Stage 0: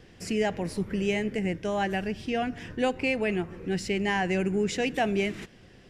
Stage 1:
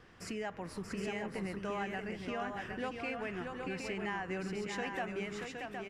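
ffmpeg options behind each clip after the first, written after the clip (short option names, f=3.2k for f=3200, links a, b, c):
-filter_complex "[0:a]equalizer=f=1.2k:w=1.4:g=14,acompressor=threshold=-30dB:ratio=3,asplit=2[a][b];[b]aecho=0:1:632|766:0.531|0.531[c];[a][c]amix=inputs=2:normalize=0,volume=-8.5dB"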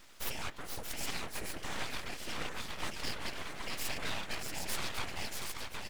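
-af "crystalizer=i=6.5:c=0,afftfilt=real='hypot(re,im)*cos(2*PI*random(0))':imag='hypot(re,im)*sin(2*PI*random(1))':win_size=512:overlap=0.75,aeval=exprs='abs(val(0))':c=same,volume=5dB"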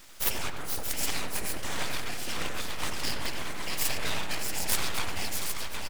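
-filter_complex "[0:a]highshelf=f=6.5k:g=8.5,asplit=2[a][b];[b]acrusher=bits=3:mix=0:aa=0.000001,volume=-7.5dB[c];[a][c]amix=inputs=2:normalize=0,asplit=2[d][e];[e]adelay=90,lowpass=f=1.7k:p=1,volume=-4.5dB,asplit=2[f][g];[g]adelay=90,lowpass=f=1.7k:p=1,volume=0.53,asplit=2[h][i];[i]adelay=90,lowpass=f=1.7k:p=1,volume=0.53,asplit=2[j][k];[k]adelay=90,lowpass=f=1.7k:p=1,volume=0.53,asplit=2[l][m];[m]adelay=90,lowpass=f=1.7k:p=1,volume=0.53,asplit=2[n][o];[o]adelay=90,lowpass=f=1.7k:p=1,volume=0.53,asplit=2[p][q];[q]adelay=90,lowpass=f=1.7k:p=1,volume=0.53[r];[d][f][h][j][l][n][p][r]amix=inputs=8:normalize=0,volume=4dB"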